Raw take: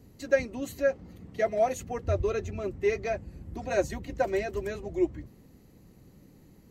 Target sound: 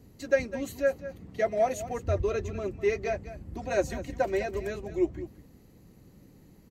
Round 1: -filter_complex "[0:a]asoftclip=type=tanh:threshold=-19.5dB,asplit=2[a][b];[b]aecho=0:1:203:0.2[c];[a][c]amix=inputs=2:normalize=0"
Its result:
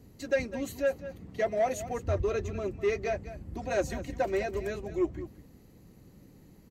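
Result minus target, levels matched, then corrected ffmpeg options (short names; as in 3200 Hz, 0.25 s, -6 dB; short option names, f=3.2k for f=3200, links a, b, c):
soft clip: distortion +19 dB
-filter_complex "[0:a]asoftclip=type=tanh:threshold=-7.5dB,asplit=2[a][b];[b]aecho=0:1:203:0.2[c];[a][c]amix=inputs=2:normalize=0"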